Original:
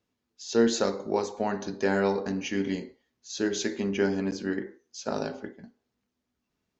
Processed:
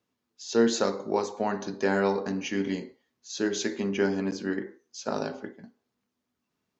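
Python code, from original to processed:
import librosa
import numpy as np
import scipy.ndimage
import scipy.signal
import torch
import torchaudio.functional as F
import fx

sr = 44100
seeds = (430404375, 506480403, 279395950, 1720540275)

y = scipy.signal.sosfilt(scipy.signal.butter(2, 98.0, 'highpass', fs=sr, output='sos'), x)
y = fx.peak_eq(y, sr, hz=1100.0, db=3.0, octaves=0.57)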